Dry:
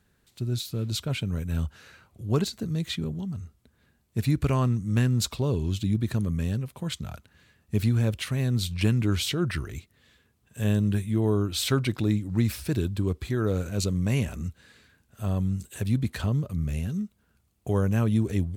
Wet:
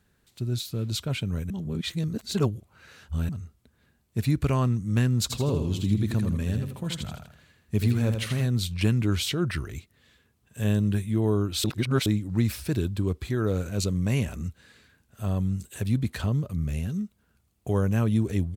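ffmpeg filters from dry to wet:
-filter_complex "[0:a]asplit=3[a][b][c];[a]afade=t=out:st=5.29:d=0.02[d];[b]aecho=1:1:81|162|243|324|405:0.473|0.189|0.0757|0.0303|0.0121,afade=t=in:st=5.29:d=0.02,afade=t=out:st=8.45:d=0.02[e];[c]afade=t=in:st=8.45:d=0.02[f];[d][e][f]amix=inputs=3:normalize=0,asplit=5[g][h][i][j][k];[g]atrim=end=1.502[l];[h]atrim=start=1.498:end=3.292,asetpts=PTS-STARTPTS,areverse[m];[i]atrim=start=3.288:end=11.642[n];[j]atrim=start=11.638:end=12.062,asetpts=PTS-STARTPTS,areverse[o];[k]atrim=start=12.058[p];[l][m]acrossfade=d=0.004:c1=hsin:c2=hsin[q];[q][n]acrossfade=d=0.004:c1=hsin:c2=hsin[r];[r][o]acrossfade=d=0.004:c1=hsin:c2=hsin[s];[s][p]acrossfade=d=0.004:c1=hsin:c2=hsin"

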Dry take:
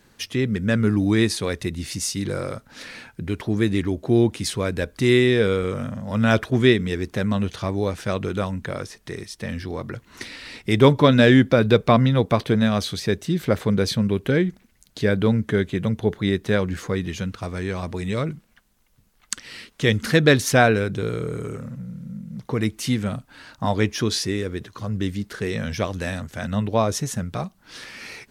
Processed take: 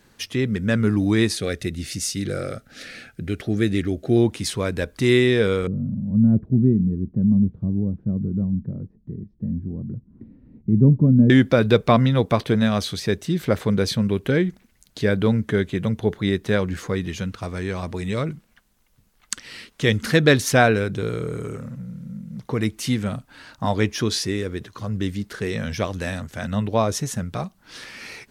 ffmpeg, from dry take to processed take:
-filter_complex "[0:a]asettb=1/sr,asplit=3[a][b][c];[a]atrim=end=1.344[d];[b]atrim=start=1.34:end=4.17,asetpts=PTS-STARTPTS,afade=t=in:d=0.004:c=qsin,afade=t=out:st=2.826:d=0.004:c=qsin,asuperstop=centerf=970:order=4:qfactor=2.4[e];[c]atrim=start=4.166[f];[d][e]acrossfade=d=0.004:c1=hsin:c2=qsin[g];[g][f]acrossfade=d=0.004:c1=qsin:c2=hsin,asettb=1/sr,asplit=3[h][i][j];[h]atrim=end=5.674[k];[i]atrim=start=5.67:end=11.3,asetpts=PTS-STARTPTS,afade=t=in:d=0.004:c=qsin,afade=t=out:st=5.626:d=0.004:c=qsin,lowpass=f=200:t=q:w=2.3[l];[j]atrim=start=11.296[m];[k][l]acrossfade=d=0.004:c1=hsin:c2=qsin[n];[n][m]acrossfade=d=0.004:c1=qsin:c2=hsin"

